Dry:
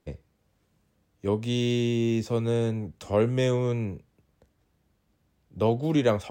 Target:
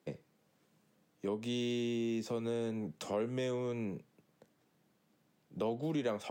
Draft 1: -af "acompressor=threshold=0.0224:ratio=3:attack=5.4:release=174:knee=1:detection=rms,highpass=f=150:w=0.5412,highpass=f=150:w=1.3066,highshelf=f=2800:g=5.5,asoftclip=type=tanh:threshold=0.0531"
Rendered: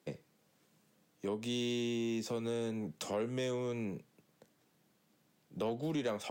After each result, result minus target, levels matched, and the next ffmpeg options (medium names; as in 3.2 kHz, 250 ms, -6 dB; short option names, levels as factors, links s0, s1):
saturation: distortion +15 dB; 4 kHz band +3.0 dB
-af "acompressor=threshold=0.0224:ratio=3:attack=5.4:release=174:knee=1:detection=rms,highpass=f=150:w=0.5412,highpass=f=150:w=1.3066,highshelf=f=2800:g=5.5,asoftclip=type=tanh:threshold=0.133"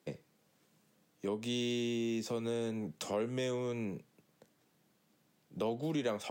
4 kHz band +3.0 dB
-af "acompressor=threshold=0.0224:ratio=3:attack=5.4:release=174:knee=1:detection=rms,highpass=f=150:w=0.5412,highpass=f=150:w=1.3066,asoftclip=type=tanh:threshold=0.133"